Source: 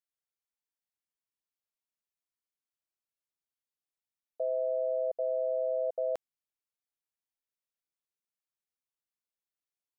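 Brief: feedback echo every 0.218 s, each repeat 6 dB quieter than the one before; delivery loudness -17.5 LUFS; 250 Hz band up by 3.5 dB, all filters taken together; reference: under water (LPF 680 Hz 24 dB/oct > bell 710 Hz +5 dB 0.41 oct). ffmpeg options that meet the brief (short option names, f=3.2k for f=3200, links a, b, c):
-af "lowpass=f=680:w=0.5412,lowpass=f=680:w=1.3066,equalizer=f=250:t=o:g=5,equalizer=f=710:t=o:w=0.41:g=5,aecho=1:1:218|436|654|872|1090|1308:0.501|0.251|0.125|0.0626|0.0313|0.0157,volume=15dB"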